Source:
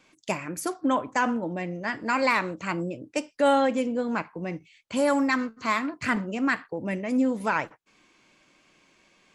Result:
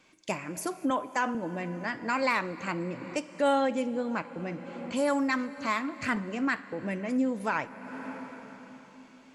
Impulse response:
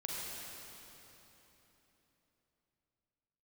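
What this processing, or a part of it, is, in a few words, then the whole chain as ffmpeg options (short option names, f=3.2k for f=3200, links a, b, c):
ducked reverb: -filter_complex "[0:a]asplit=3[a][b][c];[1:a]atrim=start_sample=2205[d];[b][d]afir=irnorm=-1:irlink=0[e];[c]apad=whole_len=412146[f];[e][f]sidechaincompress=threshold=-37dB:ratio=8:attack=20:release=390,volume=-3.5dB[g];[a][g]amix=inputs=2:normalize=0,asettb=1/sr,asplit=3[h][i][j];[h]atrim=end=0.904[k];[i]atrim=start=0.9:end=1.35,asetpts=PTS-STARTPTS,afade=t=in:d=0.004:c=qsin,afade=t=out:st=0.446:d=0.004:c=qsin,highpass=230[l];[j]atrim=start=1.346[m];[k][l]acrossfade=d=0.004:c1=hsin:c2=qsin[n];[n][m]acrossfade=d=0.004:c1=qsin:c2=hsin,volume=-4.5dB"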